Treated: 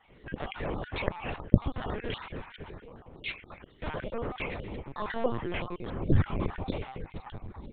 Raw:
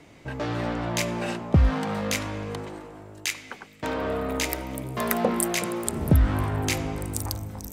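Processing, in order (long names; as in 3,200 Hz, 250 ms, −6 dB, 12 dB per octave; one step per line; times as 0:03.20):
time-frequency cells dropped at random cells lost 37%
linear-prediction vocoder at 8 kHz pitch kept
level −4.5 dB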